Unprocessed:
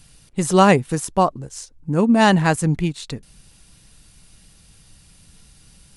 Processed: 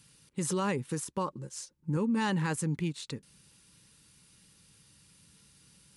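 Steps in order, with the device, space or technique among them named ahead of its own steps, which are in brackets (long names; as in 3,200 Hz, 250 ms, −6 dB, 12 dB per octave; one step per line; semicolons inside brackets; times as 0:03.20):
PA system with an anti-feedback notch (high-pass filter 110 Hz 12 dB per octave; Butterworth band-reject 690 Hz, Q 3.1; brickwall limiter −15 dBFS, peak gain reduction 11 dB)
0:01.27–0:01.97: comb filter 5.6 ms, depth 51%
level −8 dB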